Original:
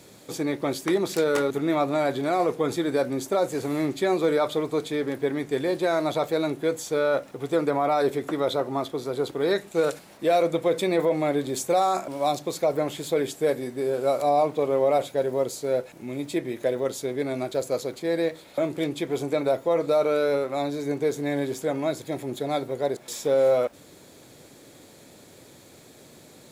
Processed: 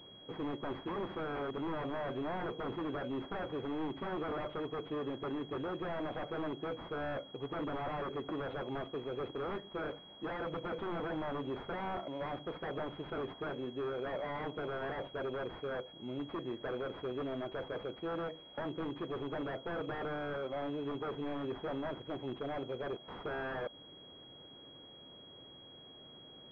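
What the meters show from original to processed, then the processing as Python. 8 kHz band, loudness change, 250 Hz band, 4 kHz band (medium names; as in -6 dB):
under -35 dB, -14.5 dB, -12.0 dB, -10.5 dB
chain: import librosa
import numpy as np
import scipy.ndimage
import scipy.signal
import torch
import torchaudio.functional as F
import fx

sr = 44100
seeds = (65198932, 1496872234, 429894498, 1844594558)

y = 10.0 ** (-24.0 / 20.0) * (np.abs((x / 10.0 ** (-24.0 / 20.0) + 3.0) % 4.0 - 2.0) - 1.0)
y = fx.pwm(y, sr, carrier_hz=3300.0)
y = F.gain(torch.from_numpy(y), -8.0).numpy()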